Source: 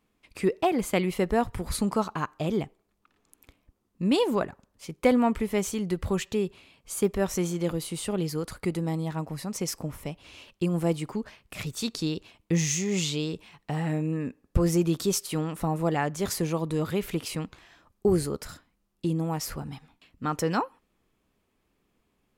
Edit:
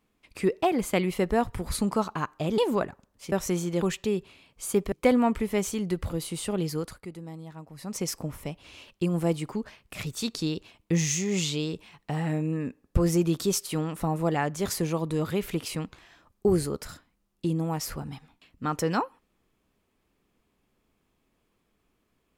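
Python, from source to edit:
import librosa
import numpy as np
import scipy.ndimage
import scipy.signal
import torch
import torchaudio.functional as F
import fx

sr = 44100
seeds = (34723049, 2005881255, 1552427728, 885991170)

y = fx.edit(x, sr, fx.cut(start_s=2.58, length_s=1.6),
    fx.swap(start_s=4.92, length_s=1.18, other_s=7.2, other_length_s=0.5),
    fx.fade_down_up(start_s=8.41, length_s=1.14, db=-11.5, fade_s=0.21), tone=tone)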